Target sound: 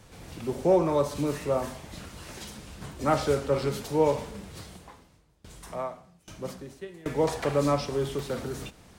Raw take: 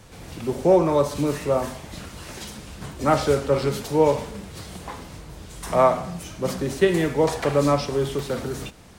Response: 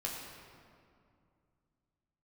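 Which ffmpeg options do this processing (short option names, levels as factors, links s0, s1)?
-filter_complex "[0:a]asettb=1/sr,asplit=3[s0][s1][s2];[s0]atrim=end=4.614[s3];[s1]atrim=start=4.61:end=7.06,asetpts=PTS-STARTPTS,afade=t=in:d=0.004:c=qsin,afade=t=out:st=2.446:d=0.004:c=qsin,aeval=exprs='val(0)*pow(10,-25*if(lt(mod(1.2*n/s,1),2*abs(1.2)/1000),1-mod(1.2*n/s,1)/(2*abs(1.2)/1000),(mod(1.2*n/s,1)-2*abs(1.2)/1000)/(1-2*abs(1.2)/1000))/20)':c=same[s4];[s2]atrim=start=7.056[s5];[s3][s4]acrossfade=d=0.004:c1=hsin:c2=qsin[s6];[s6][s5]acrossfade=d=0.004:c1=qsin:c2=hsin,volume=0.562"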